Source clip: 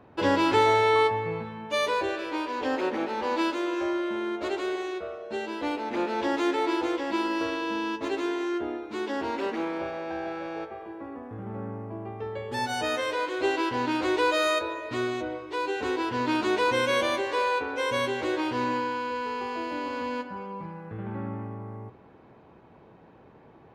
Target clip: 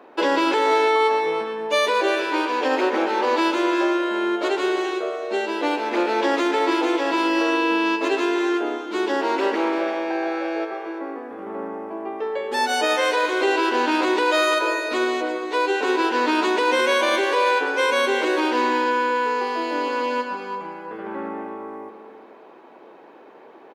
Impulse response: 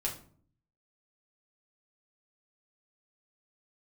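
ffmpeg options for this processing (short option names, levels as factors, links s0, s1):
-filter_complex "[0:a]highpass=f=300:w=0.5412,highpass=f=300:w=1.3066,asplit=2[s0][s1];[s1]aecho=0:1:118|236|354|472|590|708:0.2|0.118|0.0695|0.041|0.0242|0.0143[s2];[s0][s2]amix=inputs=2:normalize=0,alimiter=limit=0.1:level=0:latency=1:release=46,asplit=2[s3][s4];[s4]aecho=0:1:340:0.282[s5];[s3][s5]amix=inputs=2:normalize=0,volume=2.66"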